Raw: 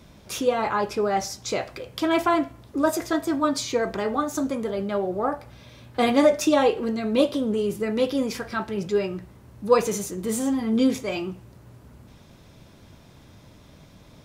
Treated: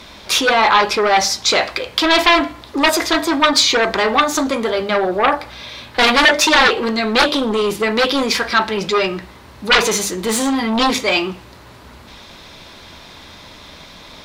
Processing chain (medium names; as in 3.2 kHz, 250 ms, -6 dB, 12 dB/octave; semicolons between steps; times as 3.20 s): hum notches 50/100/150/200/250/300 Hz; sine folder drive 14 dB, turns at -5 dBFS; ten-band graphic EQ 125 Hz -9 dB, 1 kHz +6 dB, 2 kHz +6 dB, 4 kHz +11 dB; trim -8.5 dB